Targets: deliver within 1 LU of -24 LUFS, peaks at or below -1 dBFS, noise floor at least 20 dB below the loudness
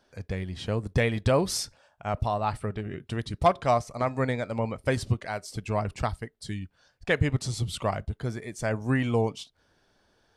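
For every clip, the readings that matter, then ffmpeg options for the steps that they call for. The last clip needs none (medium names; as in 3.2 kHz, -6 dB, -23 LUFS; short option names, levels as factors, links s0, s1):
loudness -29.0 LUFS; peak level -11.0 dBFS; loudness target -24.0 LUFS
-> -af "volume=1.78"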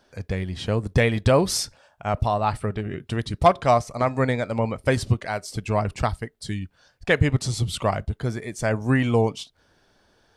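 loudness -24.0 LUFS; peak level -6.0 dBFS; noise floor -63 dBFS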